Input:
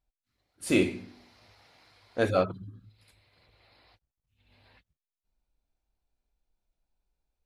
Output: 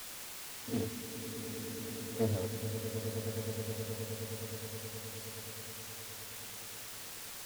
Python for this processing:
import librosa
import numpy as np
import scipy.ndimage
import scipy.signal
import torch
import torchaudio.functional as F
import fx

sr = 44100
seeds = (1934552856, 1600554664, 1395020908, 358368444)

p1 = fx.spec_steps(x, sr, hold_ms=50)
p2 = scipy.signal.sosfilt(scipy.signal.bessel(8, 4100.0, 'lowpass', norm='mag', fs=sr, output='sos'), p1)
p3 = fx.octave_resonator(p2, sr, note='A', decay_s=0.15)
p4 = p3 + fx.echo_swell(p3, sr, ms=105, loudest=8, wet_db=-11.0, dry=0)
p5 = fx.quant_dither(p4, sr, seeds[0], bits=8, dither='triangular')
p6 = fx.doppler_dist(p5, sr, depth_ms=0.44)
y = F.gain(torch.from_numpy(p6), 3.5).numpy()